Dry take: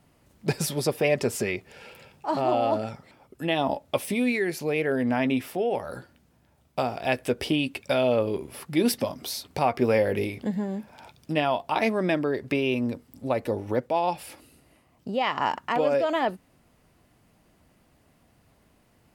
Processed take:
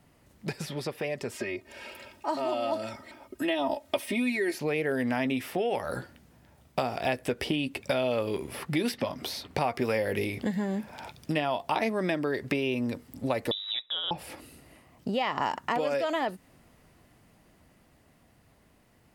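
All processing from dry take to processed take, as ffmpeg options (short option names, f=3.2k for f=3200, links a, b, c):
-filter_complex "[0:a]asettb=1/sr,asplit=3[a][b][c];[a]atrim=end=1.314[d];[b]atrim=start=1.31:end=4.58,asetpts=PTS-STARTPTS,afade=t=in:d=0.004:c=qsin,afade=t=out:st=3.266:d=0.004:c=qsin,lowshelf=f=120:g=-6,aecho=1:1:3.2:0.94,atrim=end_sample=144207[e];[c]atrim=start=4.576[f];[d][e]acrossfade=d=0.004:c1=hsin:c2=qsin[g];[g][f]acrossfade=d=0.004:c1=qsin:c2=hsin,asettb=1/sr,asplit=3[h][i][j];[h]atrim=end=13.514[k];[i]atrim=start=13.51:end=14.11,asetpts=PTS-STARTPTS,afade=t=in:d=0.004:c=qsin,afade=t=out:st=0.596:d=0.004:c=qsin,lowshelf=f=140:g=7.5,acrusher=bits=7:mode=log:mix=0:aa=0.000001,lowpass=f=3.4k:t=q:w=0.5098,lowpass=f=3.4k:t=q:w=0.6013,lowpass=f=3.4k:t=q:w=0.9,lowpass=f=3.4k:t=q:w=2.563,afreqshift=-4000[l];[j]atrim=start=14.106[m];[k][l]acrossfade=d=0.004:c1=hsin:c2=qsin[n];[n][m]acrossfade=d=0.004:c1=qsin:c2=hsin,acrossover=split=1100|4000[o][p][q];[o]acompressor=threshold=-33dB:ratio=4[r];[p]acompressor=threshold=-41dB:ratio=4[s];[q]acompressor=threshold=-50dB:ratio=4[t];[r][s][t]amix=inputs=3:normalize=0,equalizer=f=1.9k:w=6.6:g=3.5,dynaudnorm=f=460:g=13:m=5dB"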